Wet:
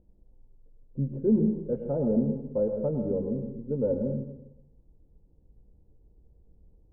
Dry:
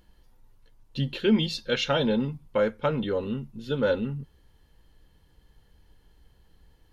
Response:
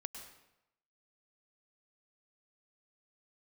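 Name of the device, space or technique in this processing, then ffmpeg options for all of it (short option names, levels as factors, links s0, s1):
next room: -filter_complex "[0:a]lowpass=f=580:w=0.5412,lowpass=f=580:w=1.3066[s0];[1:a]atrim=start_sample=2205[s1];[s0][s1]afir=irnorm=-1:irlink=0,volume=1.33"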